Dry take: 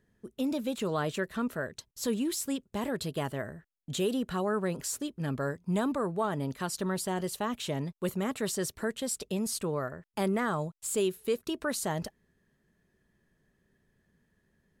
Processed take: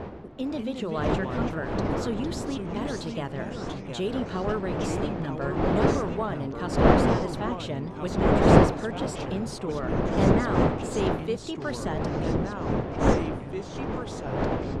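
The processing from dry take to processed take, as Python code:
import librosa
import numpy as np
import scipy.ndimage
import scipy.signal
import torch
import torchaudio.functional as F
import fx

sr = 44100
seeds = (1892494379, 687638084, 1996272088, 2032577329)

y = fx.dmg_wind(x, sr, seeds[0], corner_hz=530.0, level_db=-28.0)
y = fx.echo_pitch(y, sr, ms=117, semitones=-3, count=3, db_per_echo=-6.0)
y = scipy.signal.sosfilt(scipy.signal.butter(2, 5100.0, 'lowpass', fs=sr, output='sos'), y)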